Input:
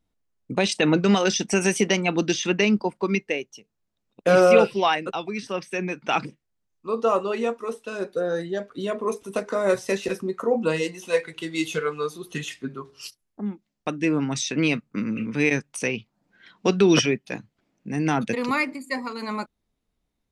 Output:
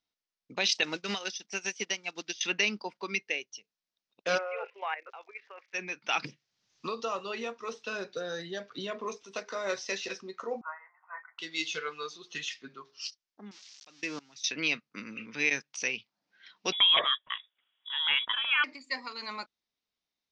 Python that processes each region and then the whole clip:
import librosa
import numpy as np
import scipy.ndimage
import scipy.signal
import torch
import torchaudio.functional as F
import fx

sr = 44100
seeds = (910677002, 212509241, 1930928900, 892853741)

y = fx.chain(x, sr, fx.block_float(bits=5),
    fx.upward_expand(threshold_db=-28.0, expansion=2.5), at=(0.83, 2.41))
y = fx.cheby1_bandpass(y, sr, low_hz=460.0, high_hz=2200.0, order=3, at=(4.37, 5.73), fade=0.02)
y = fx.level_steps(y, sr, step_db=12, at=(4.37, 5.73), fade=0.02)
y = fx.dmg_crackle(y, sr, seeds[0], per_s=130.0, level_db=-52.0, at=(4.37, 5.73), fade=0.02)
y = fx.chain(y, sr, fx.peak_eq(hz=120.0, db=14.5, octaves=1.1),
    fx.band_squash(depth_pct=100), at=(6.24, 9.17))
y = fx.chain(y, sr, fx.cheby1_bandpass(low_hz=600.0, high_hz=1800.0, order=5),
    fx.comb(ms=0.9, depth=0.82), at=(10.61, 11.39))
y = fx.chain(y, sr, fx.crossing_spikes(level_db=-23.0),
    fx.level_steps(step_db=23), at=(13.51, 14.44))
y = fx.chain(y, sr, fx.tilt_eq(slope=3.5),
    fx.freq_invert(carrier_hz=3600), at=(16.72, 18.64))
y = scipy.signal.sosfilt(scipy.signal.butter(8, 5900.0, 'lowpass', fs=sr, output='sos'), y)
y = fx.tilt_eq(y, sr, slope=4.5)
y = F.gain(torch.from_numpy(y), -8.5).numpy()